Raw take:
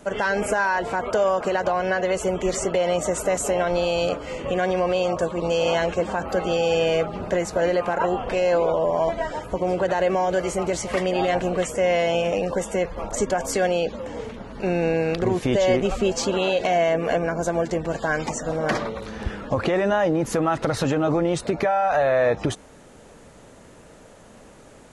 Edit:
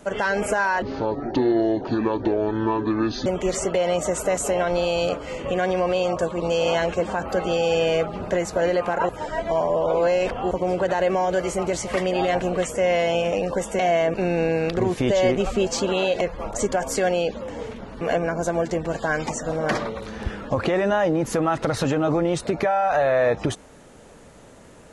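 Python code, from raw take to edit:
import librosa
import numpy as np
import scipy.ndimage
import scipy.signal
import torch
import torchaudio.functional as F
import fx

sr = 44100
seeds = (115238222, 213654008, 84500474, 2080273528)

y = fx.edit(x, sr, fx.speed_span(start_s=0.82, length_s=1.44, speed=0.59),
    fx.reverse_span(start_s=8.09, length_s=1.42),
    fx.swap(start_s=12.79, length_s=1.8, other_s=16.66, other_length_s=0.35), tone=tone)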